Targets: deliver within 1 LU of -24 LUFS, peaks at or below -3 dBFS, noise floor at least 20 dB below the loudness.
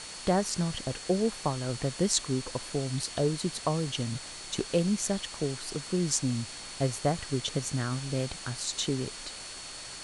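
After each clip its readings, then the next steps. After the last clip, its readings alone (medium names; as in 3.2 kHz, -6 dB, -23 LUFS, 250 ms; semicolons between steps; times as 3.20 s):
steady tone 4.4 kHz; tone level -46 dBFS; noise floor -43 dBFS; noise floor target -51 dBFS; loudness -31.0 LUFS; peak level -7.5 dBFS; loudness target -24.0 LUFS
-> band-stop 4.4 kHz, Q 30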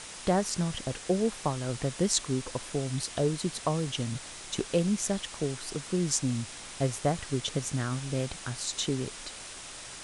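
steady tone not found; noise floor -44 dBFS; noise floor target -51 dBFS
-> noise reduction 7 dB, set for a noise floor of -44 dBFS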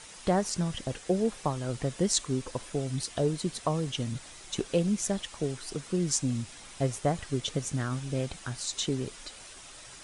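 noise floor -48 dBFS; noise floor target -51 dBFS
-> noise reduction 6 dB, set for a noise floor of -48 dBFS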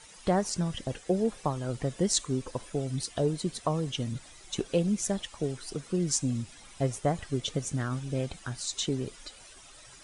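noise floor -52 dBFS; loudness -31.5 LUFS; peak level -8.0 dBFS; loudness target -24.0 LUFS
-> trim +7.5 dB; peak limiter -3 dBFS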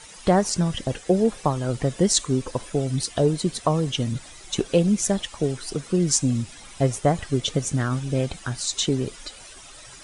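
loudness -24.0 LUFS; peak level -3.0 dBFS; noise floor -45 dBFS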